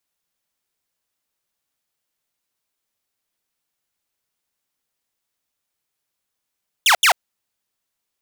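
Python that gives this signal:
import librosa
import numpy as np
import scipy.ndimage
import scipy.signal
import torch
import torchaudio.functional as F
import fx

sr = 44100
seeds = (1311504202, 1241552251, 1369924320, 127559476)

y = fx.laser_zaps(sr, level_db=-8, start_hz=3700.0, end_hz=620.0, length_s=0.09, wave='saw', shots=2, gap_s=0.08)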